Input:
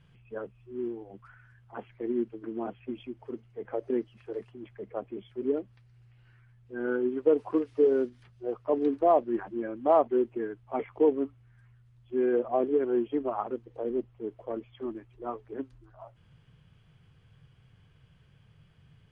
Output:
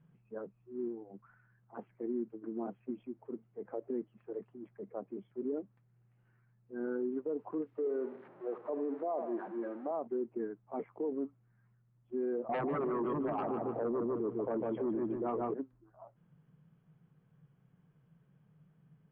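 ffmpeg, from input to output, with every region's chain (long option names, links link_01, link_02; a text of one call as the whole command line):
ffmpeg -i in.wav -filter_complex "[0:a]asettb=1/sr,asplit=3[link_01][link_02][link_03];[link_01]atrim=end=7.784[link_04];[link_02]atrim=start=7.78:end=9.91,asetpts=PTS-STARTPTS,afade=type=in:duration=0.004:curve=qsin,afade=type=out:start_time=2.126:duration=0.004:curve=qsin,aeval=exprs='val(0)+0.5*0.0141*sgn(val(0))':channel_layout=same,highpass=340,lowpass=2400,aecho=1:1:77|154|231|308:0.2|0.0918|0.0422|0.0194,atrim=end_sample=93933[link_05];[link_03]atrim=start=9.906[link_06];[link_04][link_05]acrossfade=duration=0.004:curve1=hsin:curve2=qsin[link_07];[link_07][link_06]acrossfade=duration=0.004:curve1=qsin:curve2=hsin,asettb=1/sr,asplit=3[link_08][link_09][link_10];[link_08]atrim=end=12.494[link_11];[link_09]atrim=start=12.49:end=15.54,asetpts=PTS-STARTPTS,afade=type=in:duration=0.004:curve=qsin,afade=type=out:start_time=3.046:duration=0.004:curve=qsin,aeval=exprs='0.168*sin(PI/2*3.55*val(0)/0.168)':channel_layout=same,asplit=2[link_12][link_13];[link_13]adelay=150,lowpass=frequency=2200:poles=1,volume=-6.5dB,asplit=2[link_14][link_15];[link_15]adelay=150,lowpass=frequency=2200:poles=1,volume=0.4,asplit=2[link_16][link_17];[link_17]adelay=150,lowpass=frequency=2200:poles=1,volume=0.4,asplit=2[link_18][link_19];[link_19]adelay=150,lowpass=frequency=2200:poles=1,volume=0.4,asplit=2[link_20][link_21];[link_21]adelay=150,lowpass=frequency=2200:poles=1,volume=0.4[link_22];[link_12][link_14][link_16][link_18][link_20][link_22]amix=inputs=6:normalize=0,atrim=end_sample=134505[link_23];[link_10]atrim=start=15.536[link_24];[link_11][link_23]acrossfade=duration=0.004:curve1=hsin:curve2=qsin[link_25];[link_25][link_24]acrossfade=duration=0.004:curve1=qsin:curve2=hsin,lowpass=1300,lowshelf=frequency=120:width_type=q:width=3:gain=-11,alimiter=limit=-22dB:level=0:latency=1:release=39,volume=-6dB" out.wav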